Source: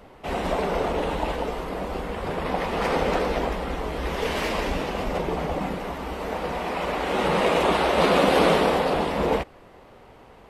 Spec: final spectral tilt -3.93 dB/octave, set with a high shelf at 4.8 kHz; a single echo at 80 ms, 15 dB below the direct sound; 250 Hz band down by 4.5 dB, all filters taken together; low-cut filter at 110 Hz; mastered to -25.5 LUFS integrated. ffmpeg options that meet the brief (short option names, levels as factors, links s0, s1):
-af "highpass=110,equalizer=f=250:t=o:g=-6,highshelf=f=4800:g=3.5,aecho=1:1:80:0.178"